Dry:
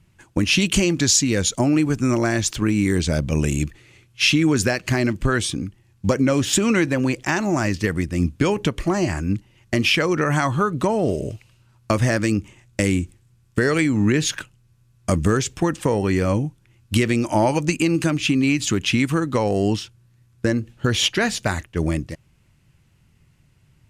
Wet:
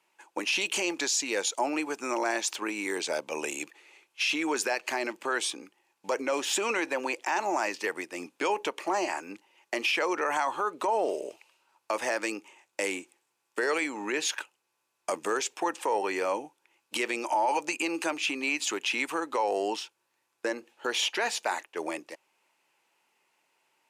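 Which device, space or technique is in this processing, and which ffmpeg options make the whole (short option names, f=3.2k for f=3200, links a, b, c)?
laptop speaker: -af "highpass=f=390:w=0.5412,highpass=f=390:w=1.3066,equalizer=f=880:t=o:w=0.44:g=10.5,equalizer=f=2.5k:t=o:w=0.25:g=4.5,alimiter=limit=-13dB:level=0:latency=1:release=12,volume=-5.5dB"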